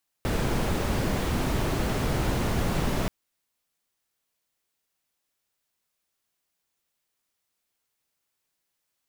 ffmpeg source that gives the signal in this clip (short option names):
-f lavfi -i "anoisesrc=c=brown:a=0.248:d=2.83:r=44100:seed=1"